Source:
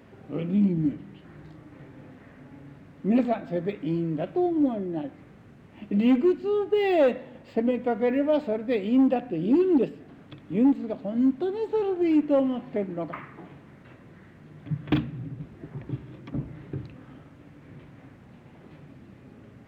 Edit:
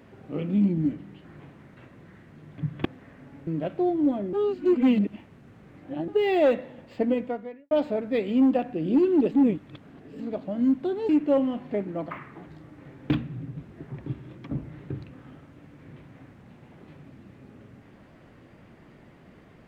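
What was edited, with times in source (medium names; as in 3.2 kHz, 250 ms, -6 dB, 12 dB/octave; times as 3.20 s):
1.40–2.04 s: swap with 13.48–14.93 s
2.66–4.04 s: delete
4.90–6.65 s: reverse
7.76–8.28 s: fade out quadratic
9.88–10.77 s: reverse
11.66–12.11 s: delete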